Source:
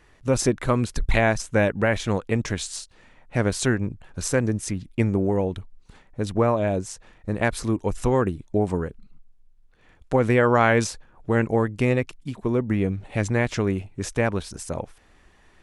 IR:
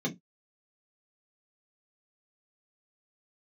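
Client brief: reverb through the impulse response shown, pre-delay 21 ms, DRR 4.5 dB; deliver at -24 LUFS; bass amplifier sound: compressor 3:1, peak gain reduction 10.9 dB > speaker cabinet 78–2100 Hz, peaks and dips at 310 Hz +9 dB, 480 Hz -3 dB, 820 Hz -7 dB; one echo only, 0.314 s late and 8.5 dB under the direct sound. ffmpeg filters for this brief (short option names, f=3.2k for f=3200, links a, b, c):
-filter_complex "[0:a]aecho=1:1:314:0.376,asplit=2[a][b];[1:a]atrim=start_sample=2205,adelay=21[c];[b][c]afir=irnorm=-1:irlink=0,volume=-10dB[d];[a][d]amix=inputs=2:normalize=0,acompressor=threshold=-23dB:ratio=3,highpass=f=78:w=0.5412,highpass=f=78:w=1.3066,equalizer=f=310:t=q:w=4:g=9,equalizer=f=480:t=q:w=4:g=-3,equalizer=f=820:t=q:w=4:g=-7,lowpass=f=2.1k:w=0.5412,lowpass=f=2.1k:w=1.3066,volume=1dB"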